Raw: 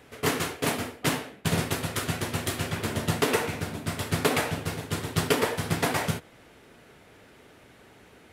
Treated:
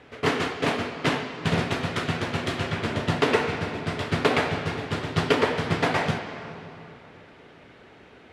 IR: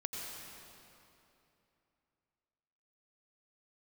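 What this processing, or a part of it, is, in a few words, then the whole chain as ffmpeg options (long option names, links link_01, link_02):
filtered reverb send: -filter_complex "[0:a]asplit=2[link_01][link_02];[link_02]highpass=frequency=190:poles=1,lowpass=5100[link_03];[1:a]atrim=start_sample=2205[link_04];[link_03][link_04]afir=irnorm=-1:irlink=0,volume=-4dB[link_05];[link_01][link_05]amix=inputs=2:normalize=0,lowpass=5000"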